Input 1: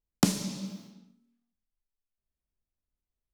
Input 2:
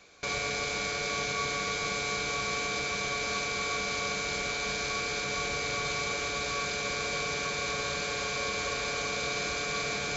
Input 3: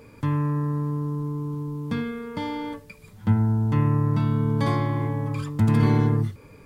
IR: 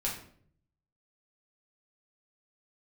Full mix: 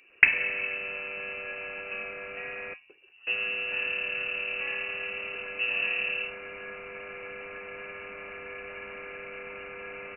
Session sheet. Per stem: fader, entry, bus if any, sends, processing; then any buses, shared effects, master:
+1.0 dB, 0.00 s, no send, flat-topped bell 720 Hz +14.5 dB
−7.5 dB, 0.10 s, muted 0:02.74–0:03.27, no send, no processing
−11.5 dB, 0.00 s, no send, no processing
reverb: not used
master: voice inversion scrambler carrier 2,800 Hz

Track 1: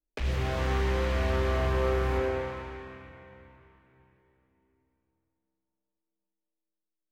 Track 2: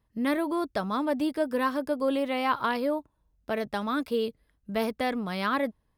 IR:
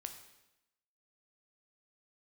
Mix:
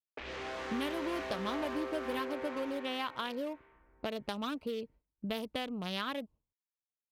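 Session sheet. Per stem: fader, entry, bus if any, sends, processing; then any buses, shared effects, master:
−8.5 dB, 0.00 s, no send, low shelf with overshoot 190 Hz −10.5 dB, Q 1.5; downward compressor, threshold −30 dBFS, peak gain reduction 7.5 dB; mid-hump overdrive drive 12 dB, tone 2,900 Hz, clips at −22.5 dBFS
+1.0 dB, 0.55 s, no send, adaptive Wiener filter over 25 samples; parametric band 3,100 Hz +9.5 dB 0.87 octaves; downward compressor 6 to 1, threshold −36 dBFS, peak gain reduction 15.5 dB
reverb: not used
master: low-pass that shuts in the quiet parts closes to 1,000 Hz, open at −36 dBFS; noise gate with hold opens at −57 dBFS; high-shelf EQ 5,300 Hz +9.5 dB

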